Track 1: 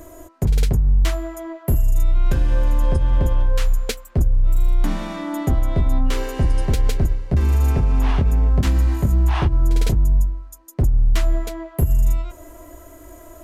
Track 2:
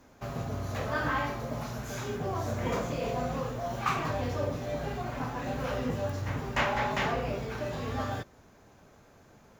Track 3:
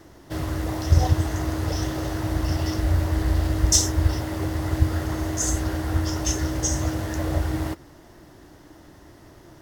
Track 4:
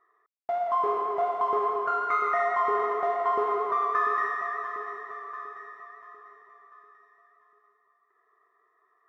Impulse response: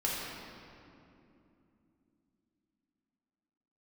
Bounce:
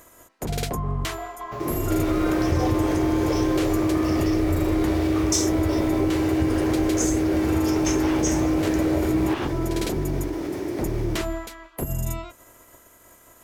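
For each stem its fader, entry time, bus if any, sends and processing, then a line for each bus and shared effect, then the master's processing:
−11.0 dB, 0.00 s, no send, ceiling on every frequency bin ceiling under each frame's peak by 22 dB
+1.5 dB, 1.30 s, no send, downward compressor 2 to 1, threshold −36 dBFS, peak gain reduction 7.5 dB
−2.0 dB, 1.60 s, no send, high-pass filter 80 Hz; hollow resonant body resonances 370/2,300 Hz, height 15 dB, ringing for 20 ms; envelope flattener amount 50%
−9.5 dB, 0.00 s, no send, no processing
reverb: not used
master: downward compressor 2 to 1, threshold −21 dBFS, peak gain reduction 5.5 dB

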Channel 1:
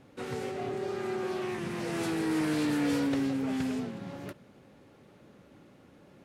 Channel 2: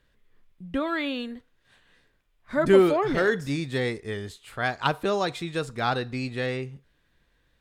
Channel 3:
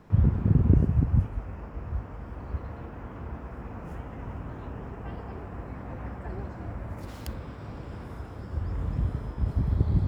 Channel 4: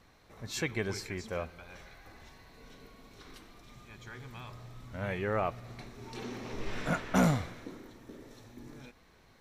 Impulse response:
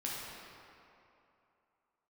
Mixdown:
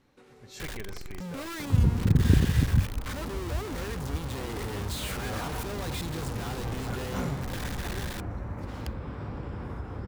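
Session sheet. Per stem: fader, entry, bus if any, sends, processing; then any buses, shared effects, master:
−12.0 dB, 0.00 s, no send, downward compressor, threshold −41 dBFS, peak gain reduction 14.5 dB
−4.5 dB, 0.60 s, no send, sign of each sample alone; parametric band 120 Hz +7 dB 1.7 octaves; soft clipping −31.5 dBFS, distortion −11 dB
−0.5 dB, 1.60 s, no send, high-shelf EQ 5,300 Hz −10.5 dB; upward compression, threshold −29 dBFS
−8.5 dB, 0.00 s, no send, no processing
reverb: not used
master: notch filter 660 Hz, Q 12

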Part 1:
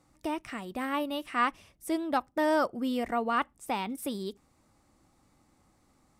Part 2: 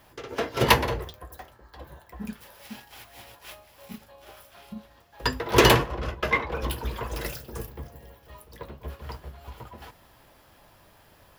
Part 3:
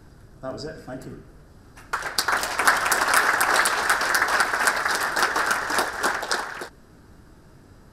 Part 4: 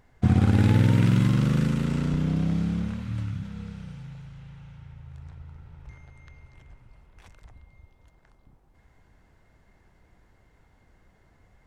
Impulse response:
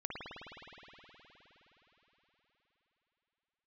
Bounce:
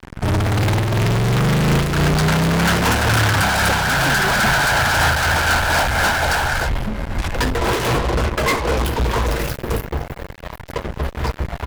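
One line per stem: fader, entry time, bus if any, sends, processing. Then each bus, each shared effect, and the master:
−3.0 dB, 0.00 s, no send, downward compressor, threshold −34 dBFS, peak gain reduction 12 dB
−8.0 dB, 2.15 s, no send, no processing
−9.5 dB, 0.00 s, no send, comb filter 1.3 ms, depth 69%
+1.5 dB, 0.00 s, no send, parametric band 350 Hz −14.5 dB 2.1 octaves; brickwall limiter −22 dBFS, peak gain reduction 8 dB; automatic gain control gain up to 5.5 dB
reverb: not used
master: high-shelf EQ 2,800 Hz −10.5 dB; fuzz pedal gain 47 dB, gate −50 dBFS; amplitude modulation by smooth noise, depth 60%

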